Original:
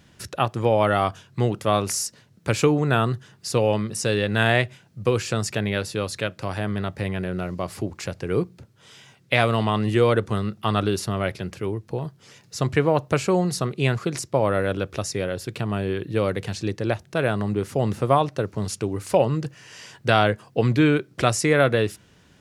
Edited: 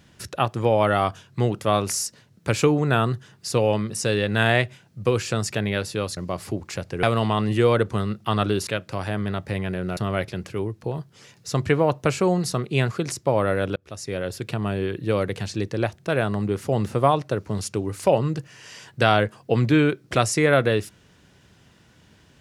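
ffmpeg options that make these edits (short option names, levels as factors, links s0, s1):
-filter_complex "[0:a]asplit=6[s0][s1][s2][s3][s4][s5];[s0]atrim=end=6.172[s6];[s1]atrim=start=7.468:end=8.332[s7];[s2]atrim=start=9.398:end=11.042[s8];[s3]atrim=start=6.168:end=7.472[s9];[s4]atrim=start=11.038:end=14.83,asetpts=PTS-STARTPTS,afade=t=out:st=3.788:d=0.004:c=hsin[s10];[s5]atrim=start=14.83,asetpts=PTS-STARTPTS,afade=t=in:d=0.5[s11];[s6][s7]acrossfade=d=0.004:c1=hsin:c2=hsin[s12];[s12][s8]acrossfade=d=0.004:c1=hsin:c2=hsin[s13];[s13][s9]acrossfade=d=0.004:c1=hsin:c2=hsin[s14];[s10][s11]concat=n=2:v=0:a=1[s15];[s14][s15]acrossfade=d=0.004:c1=hsin:c2=hsin"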